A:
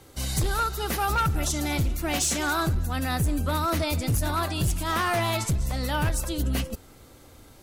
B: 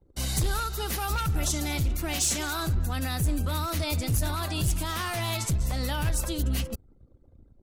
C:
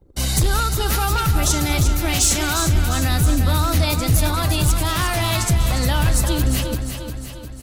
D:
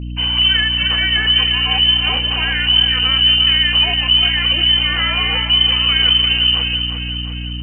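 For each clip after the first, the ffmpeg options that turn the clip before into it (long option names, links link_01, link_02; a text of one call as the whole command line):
ffmpeg -i in.wav -filter_complex "[0:a]anlmdn=0.0631,acrossover=split=130|2600[link_01][link_02][link_03];[link_02]alimiter=level_in=2.5dB:limit=-24dB:level=0:latency=1:release=147,volume=-2.5dB[link_04];[link_01][link_04][link_03]amix=inputs=3:normalize=0" out.wav
ffmpeg -i in.wav -af "aecho=1:1:353|706|1059|1412|1765|2118|2471:0.398|0.219|0.12|0.0662|0.0364|0.02|0.011,volume=8.5dB" out.wav
ffmpeg -i in.wav -af "lowpass=frequency=2600:width_type=q:width=0.5098,lowpass=frequency=2600:width_type=q:width=0.6013,lowpass=frequency=2600:width_type=q:width=0.9,lowpass=frequency=2600:width_type=q:width=2.563,afreqshift=-3100,aeval=exprs='val(0)+0.0447*(sin(2*PI*60*n/s)+sin(2*PI*2*60*n/s)/2+sin(2*PI*3*60*n/s)/3+sin(2*PI*4*60*n/s)/4+sin(2*PI*5*60*n/s)/5)':channel_layout=same,volume=3dB" out.wav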